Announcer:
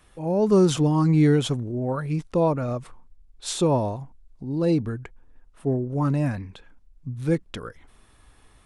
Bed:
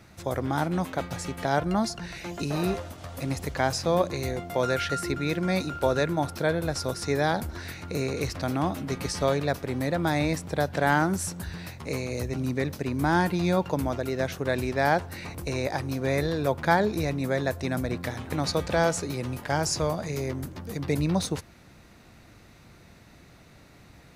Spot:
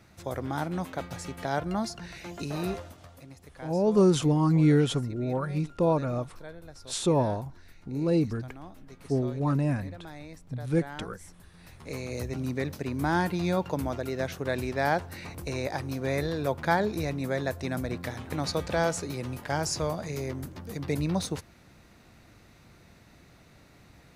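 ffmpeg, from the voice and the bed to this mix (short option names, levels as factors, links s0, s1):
-filter_complex "[0:a]adelay=3450,volume=0.708[s0];[1:a]volume=3.76,afade=t=out:st=2.77:d=0.5:silence=0.188365,afade=t=in:st=11.53:d=0.62:silence=0.158489[s1];[s0][s1]amix=inputs=2:normalize=0"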